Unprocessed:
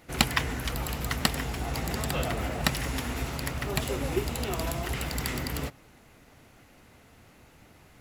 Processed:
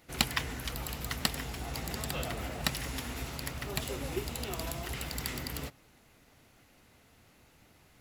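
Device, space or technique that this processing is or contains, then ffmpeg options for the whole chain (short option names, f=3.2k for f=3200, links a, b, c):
presence and air boost: -af "equalizer=f=4.1k:t=o:w=1.4:g=3.5,highshelf=f=9.3k:g=6,volume=-7dB"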